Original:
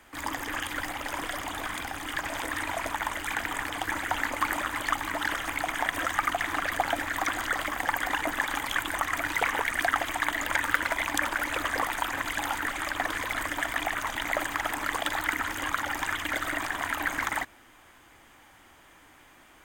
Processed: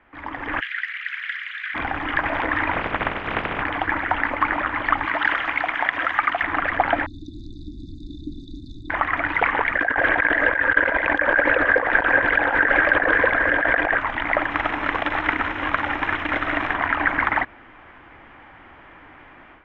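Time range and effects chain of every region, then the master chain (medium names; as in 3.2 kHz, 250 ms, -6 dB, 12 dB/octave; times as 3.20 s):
0.59–1.74 s: steep high-pass 1.6 kHz 48 dB/octave + whistle 4.1 kHz -60 dBFS
2.72–3.60 s: spectral peaks clipped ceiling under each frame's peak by 19 dB + low-pass 2.5 kHz 6 dB/octave
5.05–6.43 s: Chebyshev low-pass 6.4 kHz + tilt EQ +2.5 dB/octave
7.06–8.90 s: brick-wall FIR band-stop 380–3500 Hz + peaking EQ 380 Hz -8 dB 1.4 oct
9.75–13.98 s: compressor with a negative ratio -34 dBFS + small resonant body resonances 510/1600 Hz, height 15 dB, ringing for 20 ms
14.49–16.73 s: formants flattened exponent 0.6 + Butterworth band-stop 4.6 kHz, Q 7.8
whole clip: low-pass 2.5 kHz 24 dB/octave; level rider gain up to 11.5 dB; trim -1 dB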